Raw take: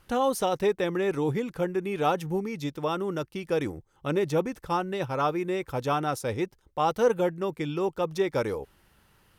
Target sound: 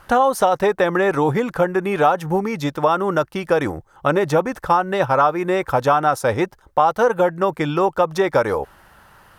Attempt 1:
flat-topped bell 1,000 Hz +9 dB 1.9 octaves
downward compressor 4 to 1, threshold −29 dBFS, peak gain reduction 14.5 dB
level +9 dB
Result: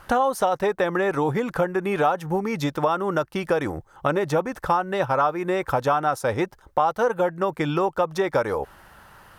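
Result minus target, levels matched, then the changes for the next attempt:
downward compressor: peak gain reduction +5 dB
change: downward compressor 4 to 1, threshold −22 dBFS, peak gain reduction 9.5 dB

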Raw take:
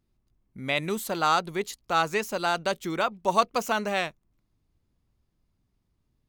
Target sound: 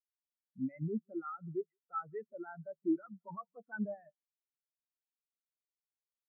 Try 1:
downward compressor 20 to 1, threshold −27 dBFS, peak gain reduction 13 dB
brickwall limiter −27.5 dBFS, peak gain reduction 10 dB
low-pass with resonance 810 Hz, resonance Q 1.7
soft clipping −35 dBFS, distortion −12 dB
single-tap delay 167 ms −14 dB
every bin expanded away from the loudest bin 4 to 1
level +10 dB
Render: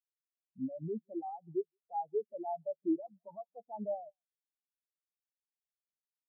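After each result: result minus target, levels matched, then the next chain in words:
downward compressor: peak gain reduction +13 dB; 1,000 Hz band +3.0 dB
brickwall limiter −27.5 dBFS, peak gain reduction 20 dB
low-pass with resonance 810 Hz, resonance Q 1.7
soft clipping −35 dBFS, distortion −11 dB
single-tap delay 167 ms −14 dB
every bin expanded away from the loudest bin 4 to 1
level +10 dB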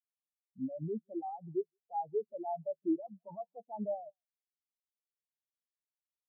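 1,000 Hz band +3.5 dB
brickwall limiter −27.5 dBFS, peak gain reduction 20 dB
low-pass with resonance 1,900 Hz, resonance Q 1.7
soft clipping −35 dBFS, distortion −11 dB
single-tap delay 167 ms −14 dB
every bin expanded away from the loudest bin 4 to 1
level +10 dB

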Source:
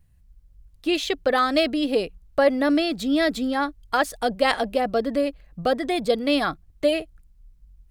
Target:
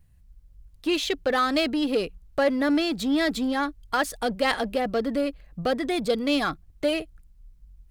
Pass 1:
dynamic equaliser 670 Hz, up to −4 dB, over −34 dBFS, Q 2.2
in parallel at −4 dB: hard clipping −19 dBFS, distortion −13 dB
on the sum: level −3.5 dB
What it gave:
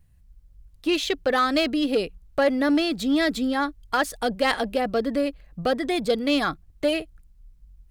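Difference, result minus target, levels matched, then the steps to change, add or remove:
hard clipping: distortion −7 dB
change: hard clipping −26.5 dBFS, distortion −6 dB

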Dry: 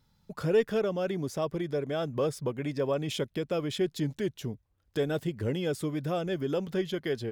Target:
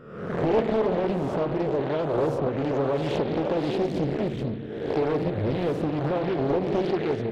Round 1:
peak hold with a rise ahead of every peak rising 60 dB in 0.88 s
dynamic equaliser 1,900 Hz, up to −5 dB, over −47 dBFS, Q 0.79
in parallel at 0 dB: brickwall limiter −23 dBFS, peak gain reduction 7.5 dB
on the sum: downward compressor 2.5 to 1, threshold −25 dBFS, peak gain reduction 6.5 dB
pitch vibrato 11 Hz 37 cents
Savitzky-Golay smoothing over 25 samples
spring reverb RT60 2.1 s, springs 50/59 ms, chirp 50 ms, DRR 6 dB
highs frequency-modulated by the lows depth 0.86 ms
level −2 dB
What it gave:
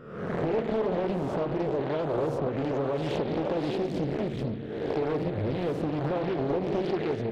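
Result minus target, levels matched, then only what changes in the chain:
downward compressor: peak gain reduction +6.5 dB
remove: downward compressor 2.5 to 1, threshold −25 dBFS, peak gain reduction 6.5 dB

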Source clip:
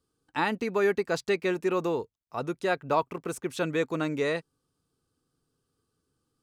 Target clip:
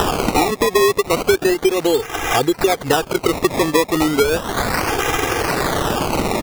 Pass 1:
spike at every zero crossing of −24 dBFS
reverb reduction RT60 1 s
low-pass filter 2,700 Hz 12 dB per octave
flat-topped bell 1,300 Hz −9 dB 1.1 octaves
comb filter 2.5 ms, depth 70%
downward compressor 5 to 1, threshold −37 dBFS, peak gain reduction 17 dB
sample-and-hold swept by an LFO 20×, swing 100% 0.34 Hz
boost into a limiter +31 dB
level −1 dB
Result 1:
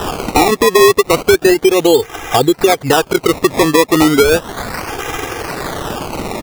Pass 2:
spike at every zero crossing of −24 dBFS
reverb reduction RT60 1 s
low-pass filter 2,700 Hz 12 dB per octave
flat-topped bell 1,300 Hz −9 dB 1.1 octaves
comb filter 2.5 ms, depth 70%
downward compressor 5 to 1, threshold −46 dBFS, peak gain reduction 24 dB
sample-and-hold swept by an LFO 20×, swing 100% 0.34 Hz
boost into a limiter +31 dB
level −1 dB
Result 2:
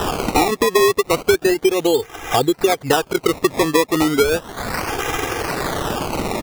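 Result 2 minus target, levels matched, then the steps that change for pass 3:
spike at every zero crossing: distortion −10 dB
change: spike at every zero crossing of −14 dBFS

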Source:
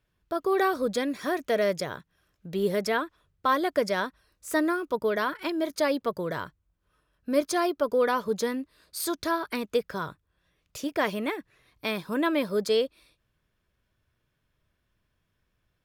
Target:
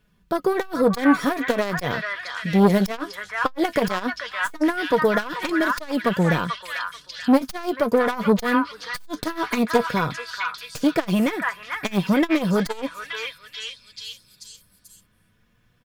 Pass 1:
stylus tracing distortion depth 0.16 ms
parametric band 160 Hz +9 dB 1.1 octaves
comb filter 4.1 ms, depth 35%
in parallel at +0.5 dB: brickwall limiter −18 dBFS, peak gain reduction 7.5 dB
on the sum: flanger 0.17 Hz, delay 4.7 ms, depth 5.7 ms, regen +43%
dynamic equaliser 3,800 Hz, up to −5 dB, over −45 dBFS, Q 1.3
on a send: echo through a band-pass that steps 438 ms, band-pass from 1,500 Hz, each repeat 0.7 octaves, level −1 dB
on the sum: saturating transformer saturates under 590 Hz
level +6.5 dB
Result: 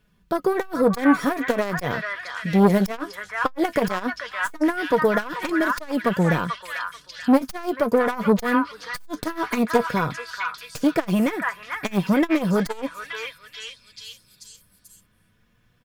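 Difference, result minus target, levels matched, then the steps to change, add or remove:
4,000 Hz band −3.5 dB
remove: dynamic equaliser 3,800 Hz, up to −5 dB, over −45 dBFS, Q 1.3

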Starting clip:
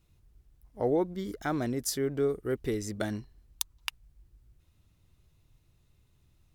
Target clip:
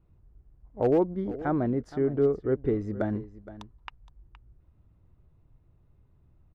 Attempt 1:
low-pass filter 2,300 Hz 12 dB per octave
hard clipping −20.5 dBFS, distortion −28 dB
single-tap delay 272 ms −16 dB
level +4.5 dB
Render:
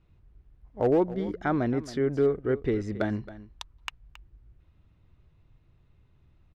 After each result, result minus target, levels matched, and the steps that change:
echo 196 ms early; 2,000 Hz band +6.5 dB
change: single-tap delay 468 ms −16 dB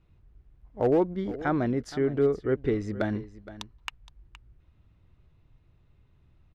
2,000 Hz band +6.5 dB
change: low-pass filter 1,100 Hz 12 dB per octave

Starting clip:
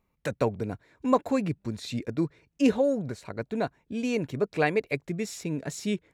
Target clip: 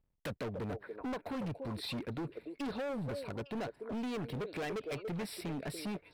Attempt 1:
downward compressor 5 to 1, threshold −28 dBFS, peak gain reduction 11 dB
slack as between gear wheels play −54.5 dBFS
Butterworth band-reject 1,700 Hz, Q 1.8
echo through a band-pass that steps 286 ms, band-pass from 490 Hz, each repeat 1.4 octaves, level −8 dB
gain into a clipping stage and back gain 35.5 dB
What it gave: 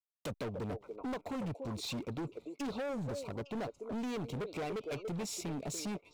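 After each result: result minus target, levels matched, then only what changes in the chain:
8,000 Hz band +8.0 dB; slack as between gear wheels: distortion +9 dB
change: Butterworth band-reject 6,600 Hz, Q 1.8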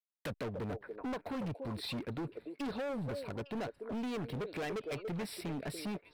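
slack as between gear wheels: distortion +9 dB
change: slack as between gear wheels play −64 dBFS

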